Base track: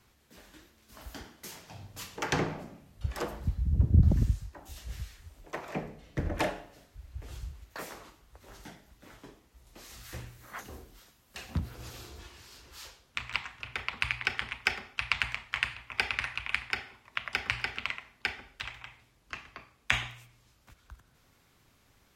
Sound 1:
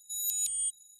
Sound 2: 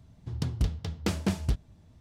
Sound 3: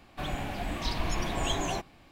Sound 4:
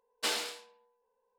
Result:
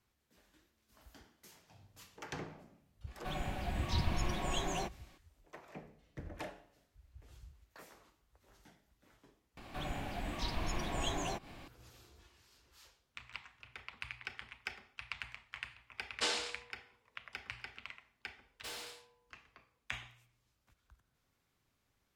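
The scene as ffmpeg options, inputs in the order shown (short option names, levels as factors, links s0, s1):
-filter_complex "[3:a]asplit=2[s0][s1];[4:a]asplit=2[s2][s3];[0:a]volume=0.188[s4];[s0]aecho=1:1:5.4:0.35[s5];[s1]acompressor=mode=upward:threshold=0.0224:ratio=2.5:attack=3.2:release=140:knee=2.83:detection=peak[s6];[s2]lowpass=f=8400:w=0.5412,lowpass=f=8400:w=1.3066[s7];[s3]asoftclip=type=tanh:threshold=0.0188[s8];[s4]asplit=2[s9][s10];[s9]atrim=end=9.574[s11];[s6]atrim=end=2.11,asetpts=PTS-STARTPTS,volume=0.473[s12];[s10]atrim=start=11.676[s13];[s5]atrim=end=2.11,asetpts=PTS-STARTPTS,volume=0.473,afade=t=in:d=0.004:c=hsin,afade=t=out:st=2.106:d=0.004:c=hsin,adelay=3070[s14];[s7]atrim=end=1.38,asetpts=PTS-STARTPTS,volume=0.794,afade=t=in:d=0.004:c=hsin,afade=t=out:st=1.376:d=0.004:c=hsin,adelay=15980[s15];[s8]atrim=end=1.38,asetpts=PTS-STARTPTS,volume=0.422,afade=t=in:d=0.004:c=hsin,afade=t=out:st=1.376:d=0.004:c=hsin,adelay=18410[s16];[s11][s12]acrossfade=d=0.004:c1=hsin:c2=hsin[s17];[s17][s13]acrossfade=d=0.004:c1=hsin:c2=hsin[s18];[s18][s14][s15][s16]amix=inputs=4:normalize=0"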